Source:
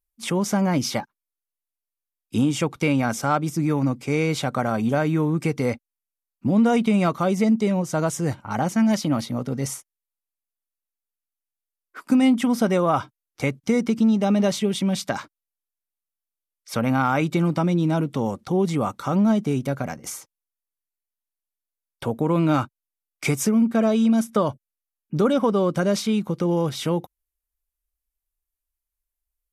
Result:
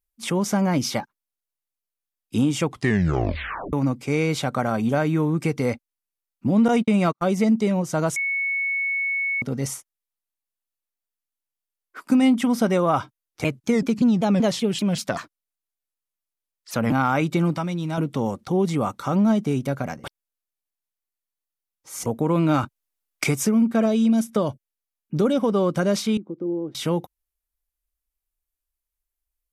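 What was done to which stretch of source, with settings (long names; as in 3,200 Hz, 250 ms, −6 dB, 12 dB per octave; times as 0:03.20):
0:02.66: tape stop 1.07 s
0:06.68–0:07.35: noise gate −23 dBFS, range −49 dB
0:08.16–0:09.42: beep over 2,210 Hz −21.5 dBFS
0:13.44–0:16.92: pitch modulation by a square or saw wave saw down 5.2 Hz, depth 250 cents
0:17.57–0:17.98: parametric band 310 Hz −9 dB 2.2 octaves
0:20.04–0:22.06: reverse
0:22.63–0:23.24: transient designer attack +11 dB, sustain +6 dB
0:23.85–0:25.50: dynamic equaliser 1,200 Hz, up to −6 dB, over −36 dBFS, Q 1.1
0:26.17–0:26.75: resonant band-pass 320 Hz, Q 3.6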